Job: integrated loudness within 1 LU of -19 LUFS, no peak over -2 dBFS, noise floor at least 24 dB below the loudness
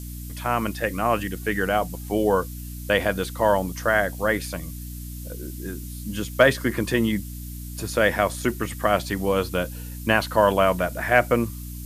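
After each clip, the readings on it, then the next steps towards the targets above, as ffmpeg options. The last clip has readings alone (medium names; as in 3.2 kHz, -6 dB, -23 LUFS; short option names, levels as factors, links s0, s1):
hum 60 Hz; highest harmonic 300 Hz; hum level -33 dBFS; noise floor -35 dBFS; noise floor target -48 dBFS; loudness -23.5 LUFS; peak level -3.0 dBFS; loudness target -19.0 LUFS
-> -af "bandreject=f=60:t=h:w=4,bandreject=f=120:t=h:w=4,bandreject=f=180:t=h:w=4,bandreject=f=240:t=h:w=4,bandreject=f=300:t=h:w=4"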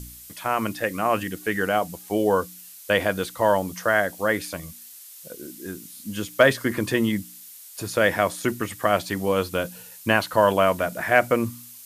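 hum not found; noise floor -44 dBFS; noise floor target -48 dBFS
-> -af "afftdn=nr=6:nf=-44"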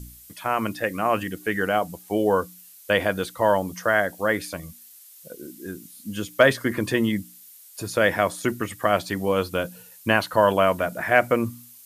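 noise floor -48 dBFS; loudness -23.5 LUFS; peak level -3.0 dBFS; loudness target -19.0 LUFS
-> -af "volume=1.68,alimiter=limit=0.794:level=0:latency=1"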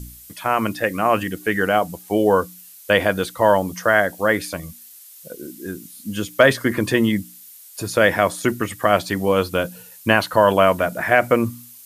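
loudness -19.5 LUFS; peak level -2.0 dBFS; noise floor -44 dBFS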